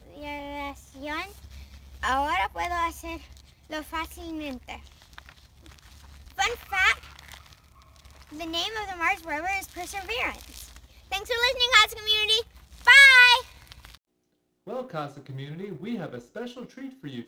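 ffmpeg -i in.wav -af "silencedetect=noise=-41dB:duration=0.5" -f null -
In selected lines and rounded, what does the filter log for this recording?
silence_start: 13.95
silence_end: 14.67 | silence_duration: 0.72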